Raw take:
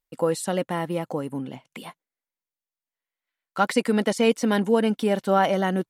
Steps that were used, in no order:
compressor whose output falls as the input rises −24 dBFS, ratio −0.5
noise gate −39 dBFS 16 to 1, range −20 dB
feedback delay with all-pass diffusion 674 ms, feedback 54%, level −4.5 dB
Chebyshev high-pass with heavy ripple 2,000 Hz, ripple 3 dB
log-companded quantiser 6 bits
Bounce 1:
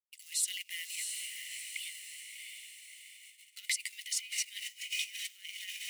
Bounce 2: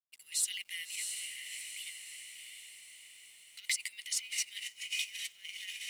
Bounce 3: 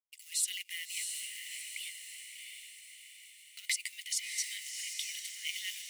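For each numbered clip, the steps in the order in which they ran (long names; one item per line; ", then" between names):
feedback delay with all-pass diffusion, then log-companded quantiser, then compressor whose output falls as the input rises, then noise gate, then Chebyshev high-pass with heavy ripple
noise gate, then feedback delay with all-pass diffusion, then compressor whose output falls as the input rises, then Chebyshev high-pass with heavy ripple, then log-companded quantiser
compressor whose output falls as the input rises, then noise gate, then feedback delay with all-pass diffusion, then log-companded quantiser, then Chebyshev high-pass with heavy ripple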